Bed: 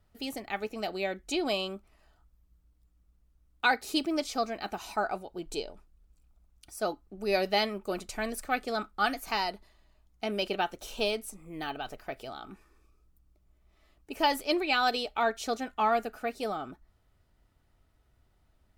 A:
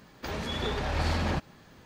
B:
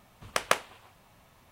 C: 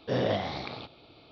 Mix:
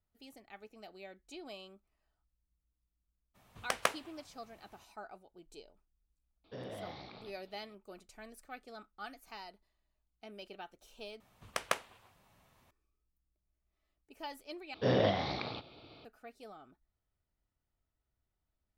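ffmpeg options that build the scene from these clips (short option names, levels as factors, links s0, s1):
-filter_complex "[2:a]asplit=2[s0][s1];[3:a]asplit=2[s2][s3];[0:a]volume=0.126[s4];[s2]alimiter=limit=0.0631:level=0:latency=1:release=20[s5];[s4]asplit=3[s6][s7][s8];[s6]atrim=end=11.204[s9];[s1]atrim=end=1.51,asetpts=PTS-STARTPTS,volume=0.398[s10];[s7]atrim=start=12.706:end=14.744[s11];[s3]atrim=end=1.31,asetpts=PTS-STARTPTS,volume=0.891[s12];[s8]atrim=start=16.046[s13];[s0]atrim=end=1.51,asetpts=PTS-STARTPTS,volume=0.501,afade=t=in:d=0.02,afade=t=out:st=1.49:d=0.02,adelay=3340[s14];[s5]atrim=end=1.31,asetpts=PTS-STARTPTS,volume=0.224,afade=t=in:d=0.004:c=hsin,afade=t=out:st=1.306:d=0.004:c=hsin,adelay=6440[s15];[s9][s10]acrossfade=d=0.004:c1=hsin:c2=hsin[s16];[s16][s11]acrossfade=d=0.004:c1=hsin:c2=hsin[s17];[s17][s12]acrossfade=d=0.004:c1=hsin:c2=hsin[s18];[s18][s13]acrossfade=d=0.004:c1=hsin:c2=hsin[s19];[s19][s14][s15]amix=inputs=3:normalize=0"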